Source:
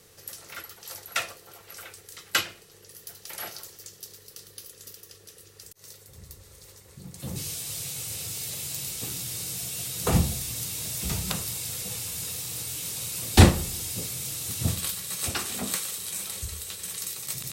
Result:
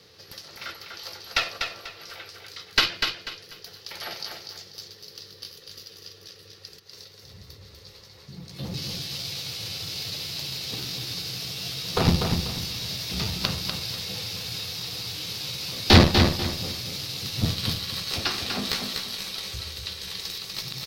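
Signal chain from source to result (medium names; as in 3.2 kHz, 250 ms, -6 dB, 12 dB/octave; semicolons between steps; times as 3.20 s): high-pass 75 Hz 12 dB/octave; tempo 0.84×; Chebyshev shaper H 5 -22 dB, 8 -16 dB, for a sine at -1.5 dBFS; resonant high shelf 6.2 kHz -10.5 dB, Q 3; on a send: feedback delay 245 ms, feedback 29%, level -5.5 dB; on the sum: trim -1 dB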